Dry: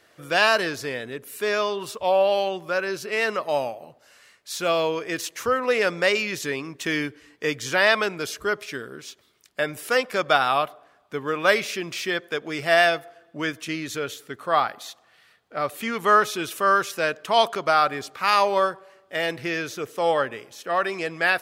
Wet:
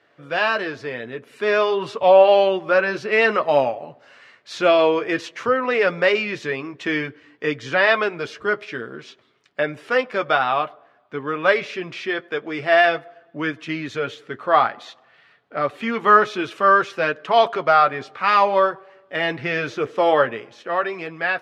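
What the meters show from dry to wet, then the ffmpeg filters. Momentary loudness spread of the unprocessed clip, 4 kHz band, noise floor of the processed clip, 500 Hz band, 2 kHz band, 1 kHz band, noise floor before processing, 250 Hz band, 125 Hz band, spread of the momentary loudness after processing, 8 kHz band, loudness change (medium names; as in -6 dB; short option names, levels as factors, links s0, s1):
13 LU, -1.5 dB, -57 dBFS, +5.0 dB, +2.5 dB, +4.0 dB, -59 dBFS, +3.5 dB, +2.5 dB, 14 LU, under -10 dB, +3.5 dB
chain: -af "dynaudnorm=f=170:g=11:m=3.76,flanger=delay=7:depth=2.1:regen=-43:speed=0.52:shape=sinusoidal,highpass=110,lowpass=2900,volume=1.41"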